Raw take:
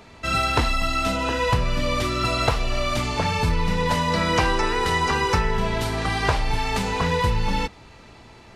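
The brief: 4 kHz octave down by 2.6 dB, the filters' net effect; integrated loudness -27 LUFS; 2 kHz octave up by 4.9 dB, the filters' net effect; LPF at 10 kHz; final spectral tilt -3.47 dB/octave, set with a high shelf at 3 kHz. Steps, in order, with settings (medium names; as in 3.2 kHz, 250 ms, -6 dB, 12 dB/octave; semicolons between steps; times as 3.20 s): low-pass 10 kHz; peaking EQ 2 kHz +8 dB; treble shelf 3 kHz -3.5 dB; peaking EQ 4 kHz -3.5 dB; trim -5.5 dB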